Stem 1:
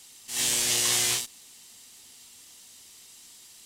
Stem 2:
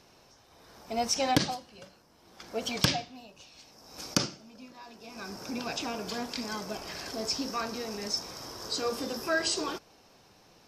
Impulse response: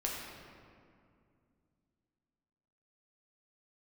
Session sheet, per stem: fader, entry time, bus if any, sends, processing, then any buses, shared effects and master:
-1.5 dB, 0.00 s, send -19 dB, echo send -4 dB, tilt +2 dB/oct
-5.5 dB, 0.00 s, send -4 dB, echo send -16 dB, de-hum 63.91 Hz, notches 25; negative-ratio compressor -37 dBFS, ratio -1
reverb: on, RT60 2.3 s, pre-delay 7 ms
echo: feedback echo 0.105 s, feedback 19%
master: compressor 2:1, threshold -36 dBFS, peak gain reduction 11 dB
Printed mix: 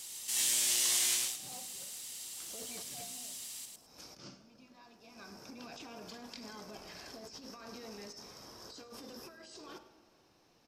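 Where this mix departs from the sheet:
stem 2 -5.5 dB -> -15.0 dB; reverb return -8.5 dB

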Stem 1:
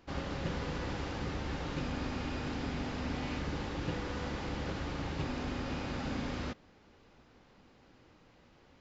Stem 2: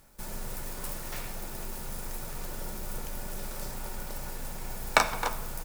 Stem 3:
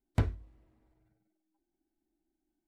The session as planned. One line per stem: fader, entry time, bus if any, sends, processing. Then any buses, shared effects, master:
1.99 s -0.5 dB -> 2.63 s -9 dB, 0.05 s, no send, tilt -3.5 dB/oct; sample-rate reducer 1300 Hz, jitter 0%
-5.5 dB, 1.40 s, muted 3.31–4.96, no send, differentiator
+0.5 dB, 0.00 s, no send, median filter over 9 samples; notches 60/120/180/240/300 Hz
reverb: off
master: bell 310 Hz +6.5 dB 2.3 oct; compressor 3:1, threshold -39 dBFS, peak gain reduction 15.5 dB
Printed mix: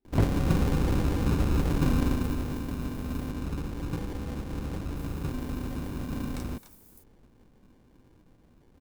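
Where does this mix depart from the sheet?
stem 2 -5.5 dB -> -17.0 dB; master: missing compressor 3:1, threshold -39 dBFS, peak gain reduction 15.5 dB

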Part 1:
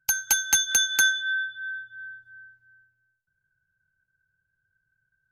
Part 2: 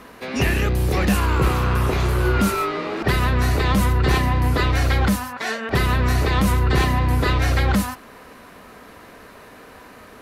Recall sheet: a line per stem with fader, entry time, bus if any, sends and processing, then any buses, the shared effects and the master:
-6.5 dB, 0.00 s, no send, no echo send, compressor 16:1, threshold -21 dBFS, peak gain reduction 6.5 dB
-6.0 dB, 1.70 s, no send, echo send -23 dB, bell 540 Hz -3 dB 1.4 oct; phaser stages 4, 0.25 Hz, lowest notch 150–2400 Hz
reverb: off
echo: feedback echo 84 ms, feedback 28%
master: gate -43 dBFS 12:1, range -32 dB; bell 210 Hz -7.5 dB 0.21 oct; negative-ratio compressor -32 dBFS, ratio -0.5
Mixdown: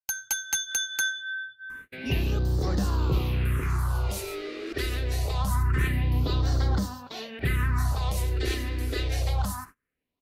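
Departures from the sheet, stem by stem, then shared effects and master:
stem 1: missing compressor 16:1, threshold -21 dBFS, peak gain reduction 6.5 dB; master: missing negative-ratio compressor -32 dBFS, ratio -0.5

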